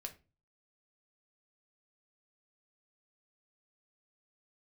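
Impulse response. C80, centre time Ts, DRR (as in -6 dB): 21.0 dB, 8 ms, 4.0 dB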